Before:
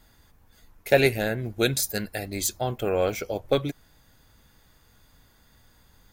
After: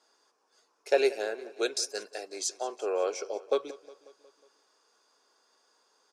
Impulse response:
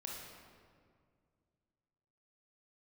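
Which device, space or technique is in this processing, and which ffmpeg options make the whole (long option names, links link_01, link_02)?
phone speaker on a table: -filter_complex "[0:a]asettb=1/sr,asplit=3[link_01][link_02][link_03];[link_01]atrim=end=1.144[link_04];[link_02]atrim=start=1.14:end=3.24,asetpts=PTS-STARTPTS,afade=type=in:duration=0.004:curve=qsin,afade=type=out:start_time=2.096:duration=0.004:curve=qsin,highpass=210[link_05];[link_03]atrim=start=3.236[link_06];[link_04][link_05]acrossfade=duration=0.004:curve1=hsin:curve2=qsin[link_07];[link_07][link_06]acrossfade=duration=0.004:curve1=qsin:curve2=hsin,highpass=frequency=380:width=0.5412,highpass=frequency=380:width=1.3066,equalizer=frequency=410:width_type=q:width=4:gain=6,equalizer=frequency=1100:width_type=q:width=4:gain=5,equalizer=frequency=2000:width_type=q:width=4:gain=-9,equalizer=frequency=3500:width_type=q:width=4:gain=-5,equalizer=frequency=5400:width_type=q:width=4:gain=10,lowpass=frequency=8600:width=0.5412,lowpass=frequency=8600:width=1.3066,aecho=1:1:181|362|543|724|905:0.112|0.0662|0.0391|0.023|0.0136,volume=-6dB"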